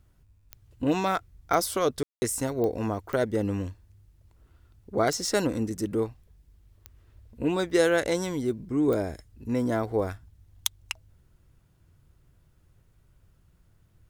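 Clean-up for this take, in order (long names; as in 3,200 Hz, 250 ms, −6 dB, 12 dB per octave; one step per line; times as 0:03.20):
click removal
ambience match 0:02.03–0:02.22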